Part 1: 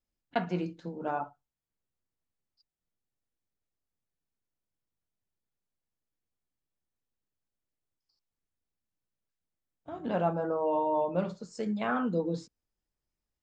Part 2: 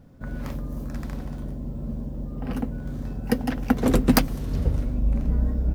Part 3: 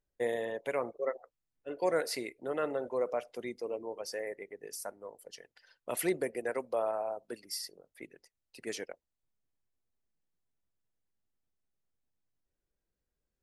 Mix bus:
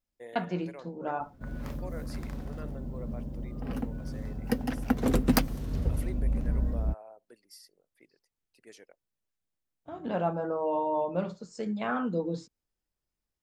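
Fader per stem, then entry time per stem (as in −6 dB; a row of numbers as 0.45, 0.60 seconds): −0.5, −5.5, −13.5 decibels; 0.00, 1.20, 0.00 seconds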